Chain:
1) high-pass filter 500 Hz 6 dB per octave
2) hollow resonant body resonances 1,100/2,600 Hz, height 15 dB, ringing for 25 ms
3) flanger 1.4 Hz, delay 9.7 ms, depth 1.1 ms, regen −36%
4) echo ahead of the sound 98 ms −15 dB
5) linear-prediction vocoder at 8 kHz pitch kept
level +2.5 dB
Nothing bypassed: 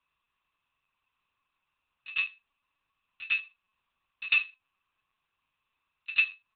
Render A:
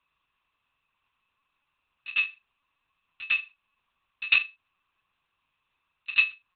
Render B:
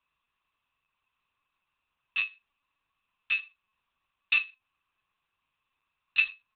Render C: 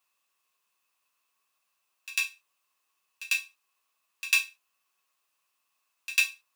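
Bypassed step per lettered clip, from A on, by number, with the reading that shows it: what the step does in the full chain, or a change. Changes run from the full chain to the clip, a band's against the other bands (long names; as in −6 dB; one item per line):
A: 3, change in momentary loudness spread +3 LU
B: 4, change in momentary loudness spread −8 LU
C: 5, change in crest factor +4.5 dB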